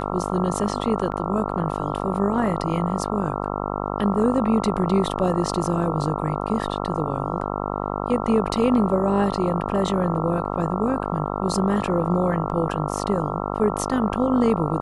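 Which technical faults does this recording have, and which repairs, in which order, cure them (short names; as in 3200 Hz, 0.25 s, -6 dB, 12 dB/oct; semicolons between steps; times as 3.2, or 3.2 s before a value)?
buzz 50 Hz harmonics 27 -27 dBFS
1.12 gap 4.4 ms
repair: de-hum 50 Hz, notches 27; interpolate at 1.12, 4.4 ms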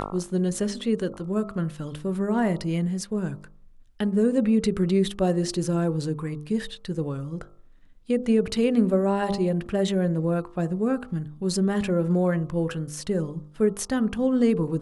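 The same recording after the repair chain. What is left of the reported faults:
none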